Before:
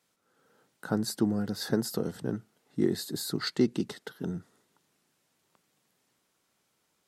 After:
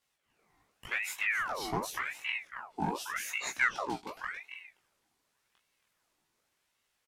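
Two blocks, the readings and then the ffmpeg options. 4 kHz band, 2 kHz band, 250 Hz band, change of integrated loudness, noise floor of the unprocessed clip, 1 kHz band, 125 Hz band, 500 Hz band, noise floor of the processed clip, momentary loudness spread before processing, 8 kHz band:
−4.5 dB, +12.5 dB, −14.5 dB, −2.5 dB, −75 dBFS, +9.0 dB, −11.5 dB, −10.0 dB, −80 dBFS, 10 LU, −1.5 dB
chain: -filter_complex "[0:a]flanger=delay=19.5:depth=5.6:speed=1.5,acrossover=split=210|5200[link_01][link_02][link_03];[link_02]asoftclip=type=hard:threshold=-27dB[link_04];[link_01][link_04][link_03]amix=inputs=3:normalize=0,asplit=2[link_05][link_06];[link_06]adelay=16,volume=-4dB[link_07];[link_05][link_07]amix=inputs=2:normalize=0,asplit=2[link_08][link_09];[link_09]adelay=274.1,volume=-8dB,highshelf=frequency=4000:gain=-6.17[link_10];[link_08][link_10]amix=inputs=2:normalize=0,aeval=exprs='val(0)*sin(2*PI*1500*n/s+1500*0.65/0.88*sin(2*PI*0.88*n/s))':channel_layout=same"

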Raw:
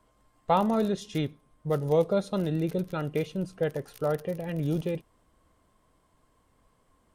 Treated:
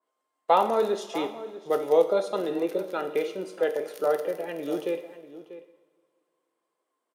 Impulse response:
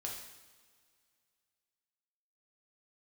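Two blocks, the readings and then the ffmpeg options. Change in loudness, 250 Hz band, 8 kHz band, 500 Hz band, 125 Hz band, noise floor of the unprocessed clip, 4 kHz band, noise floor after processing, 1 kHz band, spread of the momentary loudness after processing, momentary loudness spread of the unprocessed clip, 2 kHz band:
+2.0 dB, −4.0 dB, can't be measured, +4.0 dB, −18.5 dB, −68 dBFS, +2.5 dB, −82 dBFS, +4.5 dB, 18 LU, 9 LU, +3.5 dB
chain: -filter_complex "[0:a]agate=range=-16dB:threshold=-54dB:ratio=16:detection=peak,highpass=frequency=320:width=0.5412,highpass=frequency=320:width=1.3066,asplit=2[link_01][link_02];[link_02]adelay=641.4,volume=-14dB,highshelf=frequency=4000:gain=-14.4[link_03];[link_01][link_03]amix=inputs=2:normalize=0,asplit=2[link_04][link_05];[1:a]atrim=start_sample=2205[link_06];[link_05][link_06]afir=irnorm=-1:irlink=0,volume=-1.5dB[link_07];[link_04][link_07]amix=inputs=2:normalize=0,adynamicequalizer=threshold=0.00708:dfrequency=2400:dqfactor=0.7:tfrequency=2400:tqfactor=0.7:attack=5:release=100:ratio=0.375:range=2:mode=cutabove:tftype=highshelf"

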